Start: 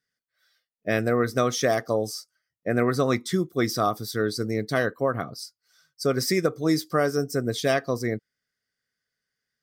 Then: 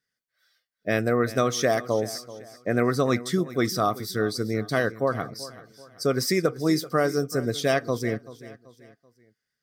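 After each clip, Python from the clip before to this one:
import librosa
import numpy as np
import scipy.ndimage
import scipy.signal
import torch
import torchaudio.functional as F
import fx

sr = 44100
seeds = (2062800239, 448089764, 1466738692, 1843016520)

y = fx.echo_feedback(x, sr, ms=384, feedback_pct=39, wet_db=-17)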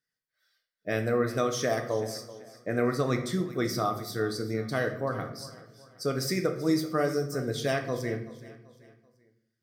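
y = fx.room_shoebox(x, sr, seeds[0], volume_m3=160.0, walls='mixed', distance_m=0.51)
y = y * 10.0 ** (-6.0 / 20.0)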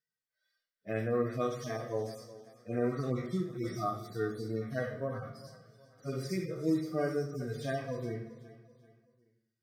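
y = fx.hpss_only(x, sr, part='harmonic')
y = y * 10.0 ** (-4.0 / 20.0)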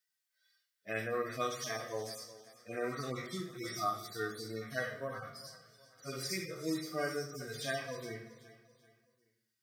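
y = fx.tilt_shelf(x, sr, db=-8.5, hz=970.0)
y = fx.hum_notches(y, sr, base_hz=60, count=4)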